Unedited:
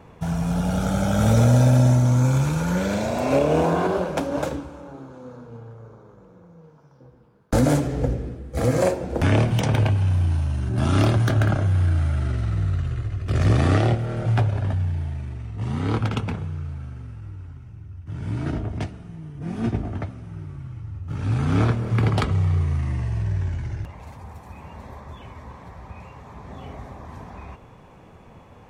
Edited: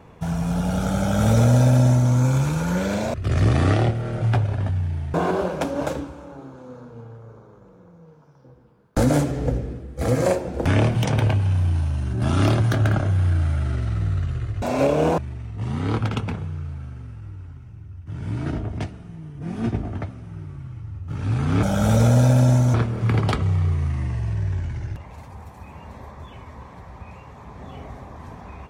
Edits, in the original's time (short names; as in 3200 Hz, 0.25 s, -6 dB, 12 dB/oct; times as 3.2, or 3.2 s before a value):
1–2.11 copy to 21.63
3.14–3.7 swap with 13.18–15.18